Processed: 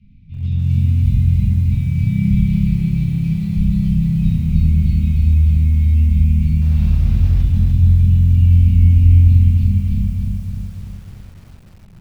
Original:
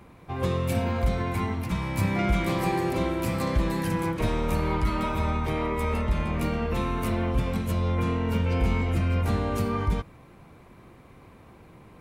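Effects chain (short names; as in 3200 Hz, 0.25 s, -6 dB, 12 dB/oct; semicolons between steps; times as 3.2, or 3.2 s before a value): elliptic band-stop 180–2500 Hz, stop band 70 dB; bell 1700 Hz -14 dB 0.21 oct; shoebox room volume 160 m³, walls mixed, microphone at 1.7 m; 6.61–7.42 modulation noise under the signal 14 dB; LPF 5100 Hz 24 dB/oct; tilt shelf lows +8.5 dB, about 880 Hz; notches 60/120/180/240/300/360 Hz; lo-fi delay 0.298 s, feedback 55%, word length 7-bit, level -4 dB; gain -5 dB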